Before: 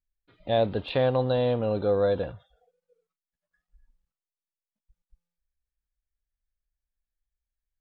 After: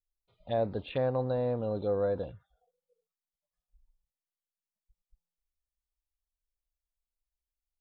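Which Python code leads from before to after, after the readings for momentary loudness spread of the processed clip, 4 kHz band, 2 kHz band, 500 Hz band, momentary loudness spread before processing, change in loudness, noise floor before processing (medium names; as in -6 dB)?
4 LU, under -10 dB, -9.5 dB, -6.0 dB, 6 LU, -6.0 dB, under -85 dBFS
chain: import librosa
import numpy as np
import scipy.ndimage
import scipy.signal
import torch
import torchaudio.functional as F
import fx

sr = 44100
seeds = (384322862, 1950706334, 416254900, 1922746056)

y = fx.env_phaser(x, sr, low_hz=280.0, high_hz=3200.0, full_db=-21.5)
y = y * 10.0 ** (-5.5 / 20.0)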